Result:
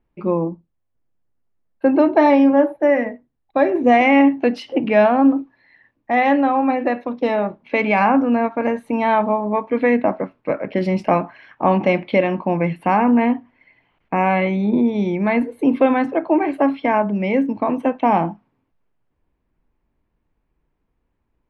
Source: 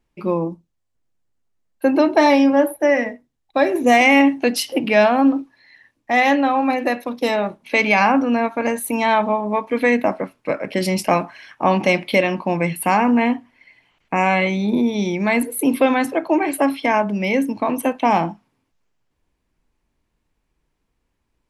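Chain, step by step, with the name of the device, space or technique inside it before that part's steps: phone in a pocket (low-pass 3.4 kHz 12 dB/octave; treble shelf 2.3 kHz -11 dB); trim +1.5 dB

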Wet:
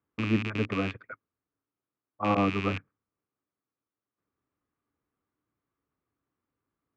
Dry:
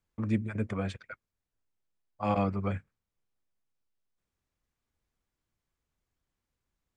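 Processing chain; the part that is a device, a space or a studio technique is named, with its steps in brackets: low-pass 2.1 kHz 12 dB/octave; car door speaker with a rattle (rattle on loud lows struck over -37 dBFS, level -23 dBFS; cabinet simulation 98–7200 Hz, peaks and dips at 110 Hz +3 dB, 290 Hz +10 dB, 420 Hz +5 dB, 1.2 kHz +8 dB)

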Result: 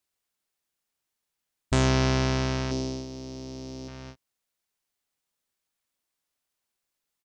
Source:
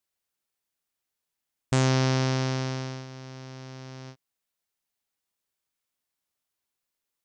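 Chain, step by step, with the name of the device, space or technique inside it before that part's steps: octave pedal (harmony voices -12 st -5 dB); 2.71–3.88 s: FFT filter 170 Hz 0 dB, 310 Hz +9 dB, 860 Hz -2 dB, 1.5 kHz -13 dB, 5 kHz +5 dB

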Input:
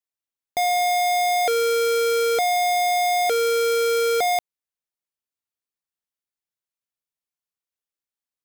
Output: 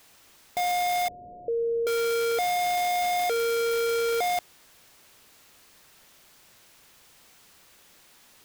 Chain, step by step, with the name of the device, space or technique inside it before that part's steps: early CD player with a faulty converter (jump at every zero crossing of -40.5 dBFS; sampling jitter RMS 0.024 ms); 1.08–1.87 s: steep low-pass 620 Hz 96 dB/octave; trim -5.5 dB

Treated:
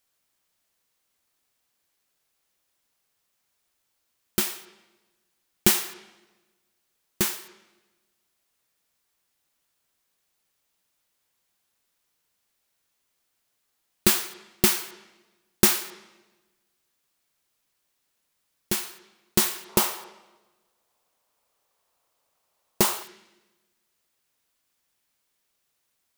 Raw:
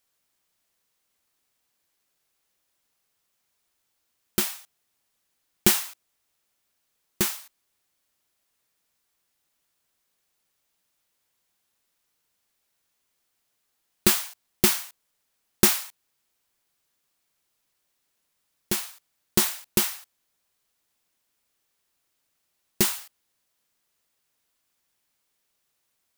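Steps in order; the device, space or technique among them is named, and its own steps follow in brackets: filtered reverb send (on a send: high-pass 440 Hz 12 dB/octave + low-pass 4.4 kHz 12 dB/octave + reverberation RT60 1.2 s, pre-delay 21 ms, DRR 11 dB); 19.69–23.03 s: on the sum: high-order bell 740 Hz +9.5 dB

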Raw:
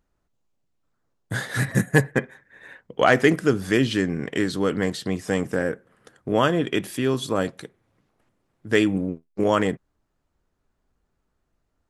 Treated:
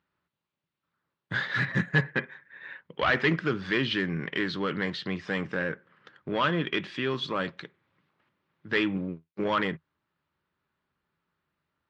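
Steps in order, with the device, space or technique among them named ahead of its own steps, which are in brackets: overdrive pedal into a guitar cabinet (overdrive pedal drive 17 dB, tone 6.5 kHz, clips at -3.5 dBFS; cabinet simulation 76–4100 Hz, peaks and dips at 84 Hz +7 dB, 160 Hz +9 dB, 270 Hz -3 dB, 470 Hz -6 dB, 710 Hz -10 dB); trim -9 dB

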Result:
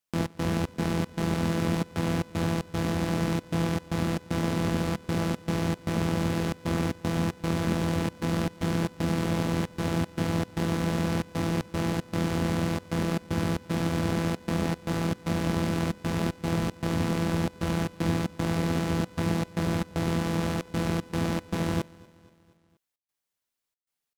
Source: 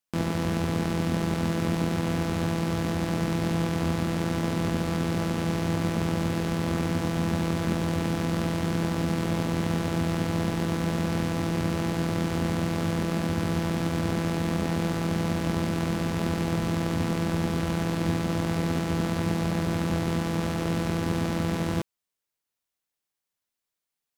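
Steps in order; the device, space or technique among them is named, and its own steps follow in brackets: trance gate with a delay (trance gate "xx.xx.xx.xxx" 115 bpm -24 dB; feedback delay 238 ms, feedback 57%, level -24 dB)

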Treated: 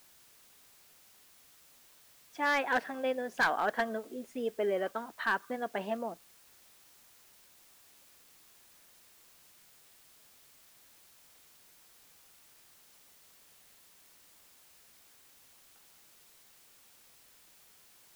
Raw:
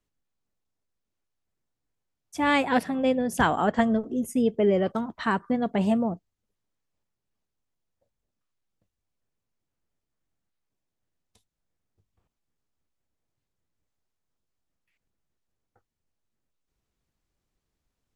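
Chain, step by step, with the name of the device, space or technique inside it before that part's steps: drive-through speaker (band-pass 460–3700 Hz; peaking EQ 1.6 kHz +8.5 dB 0.26 oct; hard clipper -17 dBFS, distortion -14 dB; white noise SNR 21 dB); trim -5 dB

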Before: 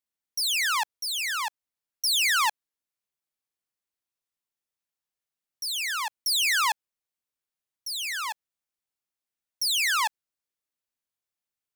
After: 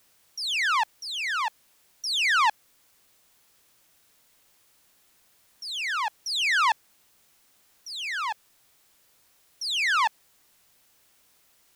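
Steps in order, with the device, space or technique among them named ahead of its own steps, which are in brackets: cassette deck with a dirty head (tape spacing loss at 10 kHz 20 dB; wow and flutter 29 cents; white noise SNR 32 dB); trim +5.5 dB

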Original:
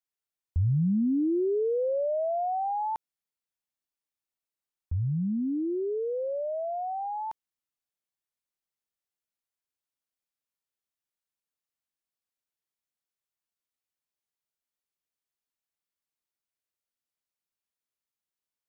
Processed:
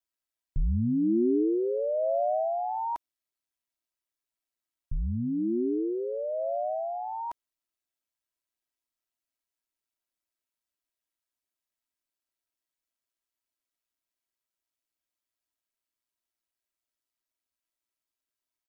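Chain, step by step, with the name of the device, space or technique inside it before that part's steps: ring-modulated robot voice (ring modulator 58 Hz; comb 3.1 ms, depth 74%); trim +1.5 dB

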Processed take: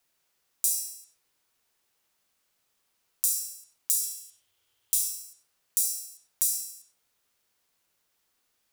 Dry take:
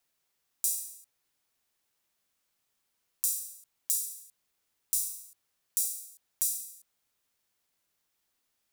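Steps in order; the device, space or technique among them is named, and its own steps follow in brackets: 4.03–5.02 s: graphic EQ with 31 bands 100 Hz +12 dB, 200 Hz -12 dB, 3.15 kHz +11 dB; filtered reverb send (on a send: high-pass 370 Hz 24 dB/octave + low-pass 8.2 kHz + reverberation RT60 0.55 s, pre-delay 64 ms, DRR 3.5 dB); on the sum: trim +3.5 dB

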